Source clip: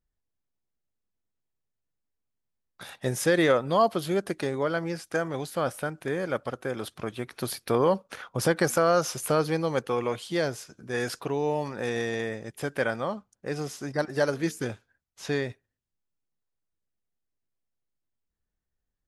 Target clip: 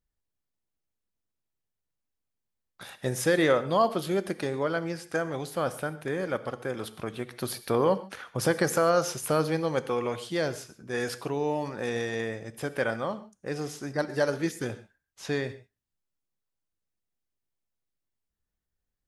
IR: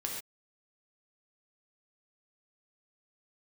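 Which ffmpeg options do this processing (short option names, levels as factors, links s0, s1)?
-filter_complex "[0:a]asplit=2[s0][s1];[1:a]atrim=start_sample=2205,asetrate=42336,aresample=44100[s2];[s1][s2]afir=irnorm=-1:irlink=0,volume=0.266[s3];[s0][s3]amix=inputs=2:normalize=0,volume=0.708"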